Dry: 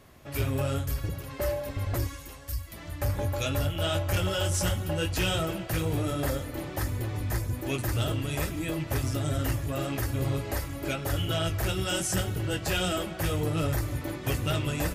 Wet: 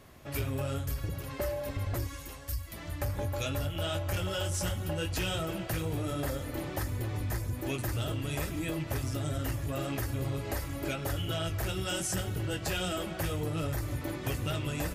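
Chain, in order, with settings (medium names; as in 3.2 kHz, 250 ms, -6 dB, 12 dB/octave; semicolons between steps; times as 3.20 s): compression 4:1, threshold -30 dBFS, peak gain reduction 6 dB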